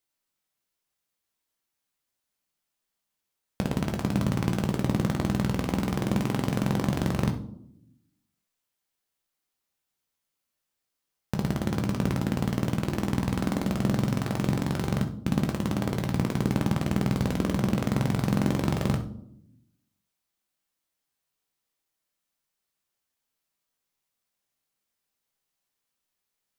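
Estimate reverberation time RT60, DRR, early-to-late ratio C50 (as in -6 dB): no single decay rate, 4.0 dB, 10.5 dB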